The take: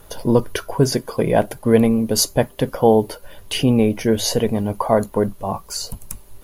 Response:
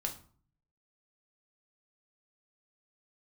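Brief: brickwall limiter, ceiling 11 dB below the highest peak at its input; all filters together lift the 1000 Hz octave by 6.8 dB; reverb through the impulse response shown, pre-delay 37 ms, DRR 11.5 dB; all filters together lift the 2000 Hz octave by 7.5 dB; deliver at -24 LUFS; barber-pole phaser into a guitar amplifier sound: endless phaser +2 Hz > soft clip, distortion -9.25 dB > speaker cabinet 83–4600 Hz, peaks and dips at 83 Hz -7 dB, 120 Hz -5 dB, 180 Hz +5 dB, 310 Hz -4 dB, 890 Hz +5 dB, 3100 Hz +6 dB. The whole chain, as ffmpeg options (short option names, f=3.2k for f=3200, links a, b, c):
-filter_complex "[0:a]equalizer=f=1k:t=o:g=4,equalizer=f=2k:t=o:g=7.5,alimiter=limit=-10.5dB:level=0:latency=1,asplit=2[a][b];[1:a]atrim=start_sample=2205,adelay=37[c];[b][c]afir=irnorm=-1:irlink=0,volume=-12.5dB[d];[a][d]amix=inputs=2:normalize=0,asplit=2[e][f];[f]afreqshift=2[g];[e][g]amix=inputs=2:normalize=1,asoftclip=threshold=-23.5dB,highpass=83,equalizer=f=83:t=q:w=4:g=-7,equalizer=f=120:t=q:w=4:g=-5,equalizer=f=180:t=q:w=4:g=5,equalizer=f=310:t=q:w=4:g=-4,equalizer=f=890:t=q:w=4:g=5,equalizer=f=3.1k:t=q:w=4:g=6,lowpass=f=4.6k:w=0.5412,lowpass=f=4.6k:w=1.3066,volume=5.5dB"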